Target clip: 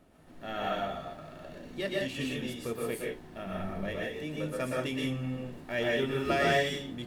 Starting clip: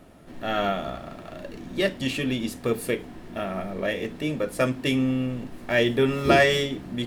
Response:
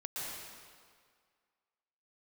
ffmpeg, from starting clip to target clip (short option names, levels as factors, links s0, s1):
-filter_complex "[0:a]asplit=3[s0][s1][s2];[s0]afade=t=out:st=3.45:d=0.02[s3];[s1]asubboost=boost=4:cutoff=220,afade=t=in:st=3.45:d=0.02,afade=t=out:st=3.86:d=0.02[s4];[s2]afade=t=in:st=3.86:d=0.02[s5];[s3][s4][s5]amix=inputs=3:normalize=0[s6];[1:a]atrim=start_sample=2205,afade=t=out:st=0.24:d=0.01,atrim=end_sample=11025[s7];[s6][s7]afir=irnorm=-1:irlink=0,volume=0.501"